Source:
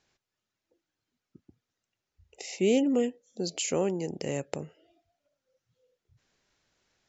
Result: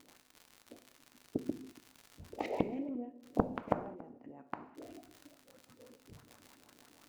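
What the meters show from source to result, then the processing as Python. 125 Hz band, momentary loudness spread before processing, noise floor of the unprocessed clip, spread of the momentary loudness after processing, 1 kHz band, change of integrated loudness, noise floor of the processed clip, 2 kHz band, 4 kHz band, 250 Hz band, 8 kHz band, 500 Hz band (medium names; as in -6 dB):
-6.0 dB, 16 LU, under -85 dBFS, 23 LU, +2.5 dB, -10.5 dB, -68 dBFS, -8.0 dB, -17.5 dB, -8.0 dB, no reading, -10.0 dB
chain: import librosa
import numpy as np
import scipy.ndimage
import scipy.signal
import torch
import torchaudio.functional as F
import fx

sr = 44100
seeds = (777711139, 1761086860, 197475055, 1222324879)

y = fx.spec_clip(x, sr, under_db=17)
y = scipy.signal.sosfilt(scipy.signal.butter(2, 49.0, 'highpass', fs=sr, output='sos'), y)
y = fx.peak_eq(y, sr, hz=260.0, db=14.0, octaves=0.56)
y = fx.filter_lfo_lowpass(y, sr, shape='saw_up', hz=6.1, low_hz=280.0, high_hz=1600.0, q=2.5)
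y = fx.dmg_crackle(y, sr, seeds[0], per_s=110.0, level_db=-50.0)
y = fx.gate_flip(y, sr, shuts_db=-22.0, range_db=-35)
y = y + 10.0 ** (-22.5 / 20.0) * np.pad(y, (int(282 * sr / 1000.0), 0))[:len(y)]
y = fx.rev_gated(y, sr, seeds[1], gate_ms=240, shape='falling', drr_db=8.0)
y = fx.doppler_dist(y, sr, depth_ms=0.6)
y = y * 10.0 ** (9.0 / 20.0)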